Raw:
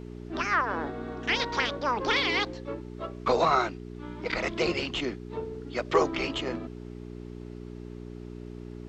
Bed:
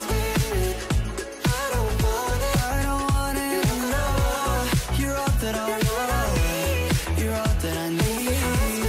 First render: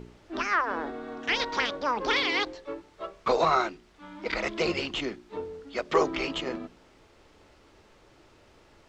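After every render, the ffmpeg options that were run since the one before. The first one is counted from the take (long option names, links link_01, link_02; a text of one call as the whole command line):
ffmpeg -i in.wav -af "bandreject=frequency=60:width_type=h:width=4,bandreject=frequency=120:width_type=h:width=4,bandreject=frequency=180:width_type=h:width=4,bandreject=frequency=240:width_type=h:width=4,bandreject=frequency=300:width_type=h:width=4,bandreject=frequency=360:width_type=h:width=4,bandreject=frequency=420:width_type=h:width=4" out.wav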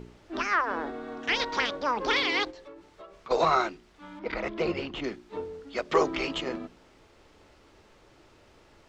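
ffmpeg -i in.wav -filter_complex "[0:a]asplit=3[link_01][link_02][link_03];[link_01]afade=type=out:start_time=2.5:duration=0.02[link_04];[link_02]acompressor=threshold=-43dB:ratio=6:attack=3.2:release=140:knee=1:detection=peak,afade=type=in:start_time=2.5:duration=0.02,afade=type=out:start_time=3.3:duration=0.02[link_05];[link_03]afade=type=in:start_time=3.3:duration=0.02[link_06];[link_04][link_05][link_06]amix=inputs=3:normalize=0,asettb=1/sr,asplit=3[link_07][link_08][link_09];[link_07]atrim=end=4.194[link_10];[link_08]atrim=start=4.19:end=5.04,asetpts=PTS-STARTPTS,afade=type=in:duration=0.004:curve=qsin,afade=type=out:start_time=0.846:duration=0.004:curve=qsin,lowpass=frequency=1500:poles=1[link_11];[link_09]atrim=start=5.036[link_12];[link_10][link_11]acrossfade=duration=0.004:curve1=hsin:curve2=qsin[link_13];[link_13][link_12]acrossfade=duration=0.004:curve1=qsin:curve2=hsin" out.wav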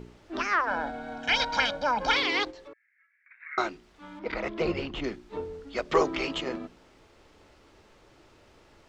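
ffmpeg -i in.wav -filter_complex "[0:a]asettb=1/sr,asplit=3[link_01][link_02][link_03];[link_01]atrim=end=0.674[link_04];[link_02]atrim=start=0.67:end=2.16,asetpts=PTS-STARTPTS,afade=type=in:duration=0.004:curve=qsin,afade=type=out:start_time=1.486:duration=0.004:curve=qsin,aecho=1:1:1.3:0.89,atrim=end_sample=65709[link_05];[link_03]atrim=start=2.156[link_06];[link_04][link_05]acrossfade=duration=0.004:curve1=hsin:curve2=qsin[link_07];[link_07][link_06]acrossfade=duration=0.004:curve1=qsin:curve2=hsin,asettb=1/sr,asplit=3[link_08][link_09][link_10];[link_08]atrim=end=2.734[link_11];[link_09]atrim=start=2.73:end=3.58,asetpts=PTS-STARTPTS,afade=type=in:duration=0.004:curve=qsin,afade=type=out:start_time=0.846:duration=0.004:curve=qsin,asuperpass=centerf=1900:order=8:qfactor=2.7[link_12];[link_10]atrim=start=3.576[link_13];[link_11][link_12]acrossfade=duration=0.004:curve1=hsin:curve2=qsin[link_14];[link_14][link_13]acrossfade=duration=0.004:curve1=qsin:curve2=hsin,asettb=1/sr,asplit=3[link_15][link_16][link_17];[link_15]atrim=end=4.614[link_18];[link_16]atrim=start=4.61:end=6.02,asetpts=PTS-STARTPTS,afade=type=in:duration=0.004:curve=qsin,afade=type=out:start_time=1.406:duration=0.004:curve=qsin,lowshelf=frequency=84:gain=9.5[link_19];[link_17]atrim=start=6.016[link_20];[link_18][link_19]acrossfade=duration=0.004:curve1=hsin:curve2=qsin[link_21];[link_21][link_20]acrossfade=duration=0.004:curve1=qsin:curve2=hsin" out.wav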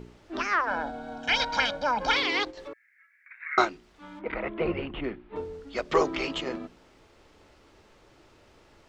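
ffmpeg -i in.wav -filter_complex "[0:a]asettb=1/sr,asplit=3[link_01][link_02][link_03];[link_01]atrim=end=0.834[link_04];[link_02]atrim=start=0.83:end=1.28,asetpts=PTS-STARTPTS,afade=type=in:duration=0.004:curve=qsin,afade=type=out:start_time=0.446:duration=0.004:curve=qsin,equalizer=frequency=2000:width_type=o:width=0.69:gain=-8[link_05];[link_03]atrim=start=1.276[link_06];[link_04][link_05]acrossfade=duration=0.004:curve1=hsin:curve2=qsin[link_07];[link_07][link_06]acrossfade=duration=0.004:curve1=qsin:curve2=hsin,asettb=1/sr,asplit=3[link_08][link_09][link_10];[link_08]atrim=end=2.574[link_11];[link_09]atrim=start=2.57:end=3.65,asetpts=PTS-STARTPTS,afade=type=in:duration=0.004:curve=qsin,afade=type=out:start_time=1.076:duration=0.004:curve=qsin,acontrast=56[link_12];[link_10]atrim=start=3.646[link_13];[link_11][link_12]acrossfade=duration=0.004:curve1=hsin:curve2=qsin[link_14];[link_14][link_13]acrossfade=duration=0.004:curve1=qsin:curve2=hsin,asettb=1/sr,asplit=3[link_15][link_16][link_17];[link_15]atrim=end=4.214[link_18];[link_16]atrim=start=4.21:end=5.36,asetpts=PTS-STARTPTS,afade=type=in:duration=0.004:curve=qsin,afade=type=out:start_time=1.146:duration=0.004:curve=qsin,lowpass=frequency=2900:width=0.5412,lowpass=frequency=2900:width=1.3066[link_19];[link_17]atrim=start=5.356[link_20];[link_18][link_19]acrossfade=duration=0.004:curve1=hsin:curve2=qsin[link_21];[link_21][link_20]acrossfade=duration=0.004:curve1=qsin:curve2=hsin" out.wav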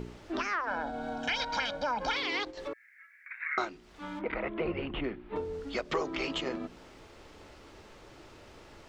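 ffmpeg -i in.wav -filter_complex "[0:a]asplit=2[link_01][link_02];[link_02]alimiter=limit=-18.5dB:level=0:latency=1,volume=-2dB[link_03];[link_01][link_03]amix=inputs=2:normalize=0,acompressor=threshold=-34dB:ratio=2.5" out.wav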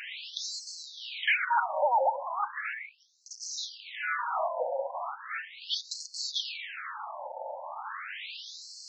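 ffmpeg -i in.wav -filter_complex "[0:a]asplit=2[link_01][link_02];[link_02]highpass=frequency=720:poles=1,volume=30dB,asoftclip=type=tanh:threshold=-15.5dB[link_03];[link_01][link_03]amix=inputs=2:normalize=0,lowpass=frequency=5000:poles=1,volume=-6dB,afftfilt=real='re*between(b*sr/1024,670*pow(5900/670,0.5+0.5*sin(2*PI*0.37*pts/sr))/1.41,670*pow(5900/670,0.5+0.5*sin(2*PI*0.37*pts/sr))*1.41)':imag='im*between(b*sr/1024,670*pow(5900/670,0.5+0.5*sin(2*PI*0.37*pts/sr))/1.41,670*pow(5900/670,0.5+0.5*sin(2*PI*0.37*pts/sr))*1.41)':win_size=1024:overlap=0.75" out.wav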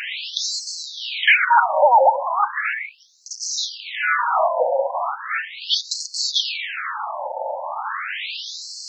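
ffmpeg -i in.wav -af "volume=12dB" out.wav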